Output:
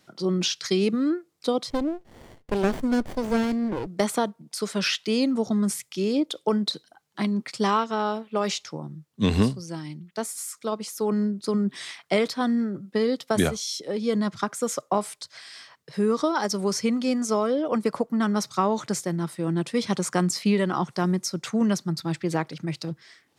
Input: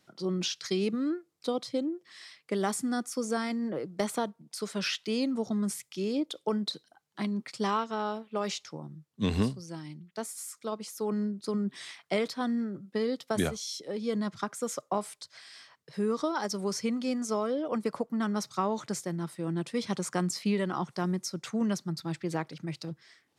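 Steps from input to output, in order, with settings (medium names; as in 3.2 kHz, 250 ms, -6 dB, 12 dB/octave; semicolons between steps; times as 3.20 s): 1.70–3.87 s: sliding maximum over 33 samples; trim +6.5 dB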